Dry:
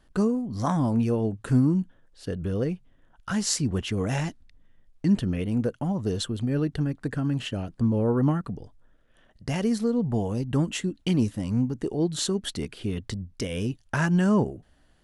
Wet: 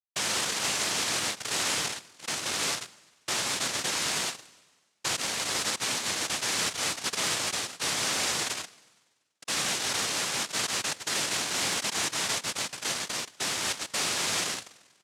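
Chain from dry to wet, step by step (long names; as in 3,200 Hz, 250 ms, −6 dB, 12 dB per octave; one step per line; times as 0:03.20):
reverb reduction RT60 2 s
comb filter 3.3 ms, depth 76%
in parallel at +1 dB: brickwall limiter −19 dBFS, peak gain reduction 8.5 dB
on the sum: flanger 0.26 Hz, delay 0.8 ms, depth 1.7 ms, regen −80%
echo with shifted repeats 142 ms, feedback 36%, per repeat +39 Hz, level −16.5 dB
log-companded quantiser 2 bits
spring reverb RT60 1.4 s, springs 48 ms, DRR 19 dB
cochlear-implant simulation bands 1
level −3.5 dB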